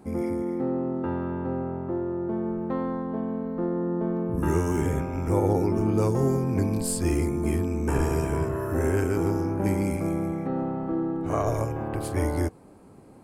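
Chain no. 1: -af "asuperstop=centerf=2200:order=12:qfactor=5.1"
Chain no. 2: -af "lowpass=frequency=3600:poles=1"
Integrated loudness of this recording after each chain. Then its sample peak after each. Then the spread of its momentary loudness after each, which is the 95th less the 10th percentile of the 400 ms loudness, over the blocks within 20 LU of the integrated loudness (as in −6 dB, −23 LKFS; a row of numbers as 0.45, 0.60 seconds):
−27.0, −27.0 LKFS; −11.5, −11.5 dBFS; 6, 6 LU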